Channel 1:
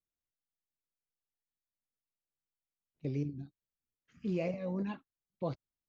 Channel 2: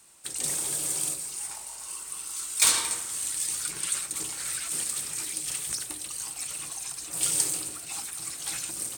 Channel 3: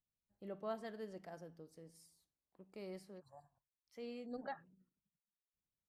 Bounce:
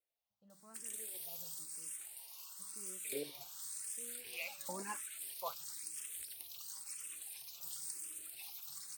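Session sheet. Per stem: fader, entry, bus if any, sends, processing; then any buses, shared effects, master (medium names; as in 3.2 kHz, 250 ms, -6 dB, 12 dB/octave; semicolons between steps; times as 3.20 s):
+2.5 dB, 0.00 s, no send, LFO high-pass saw up 0.64 Hz 540–2700 Hz
+1.5 dB, 0.50 s, no send, peaking EQ 8 kHz -12.5 dB 1.3 oct; compression 6:1, threshold -41 dBFS, peak gain reduction 16.5 dB; pre-emphasis filter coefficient 0.9
-10.0 dB, 0.00 s, no send, gain riding within 3 dB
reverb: none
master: barber-pole phaser +0.97 Hz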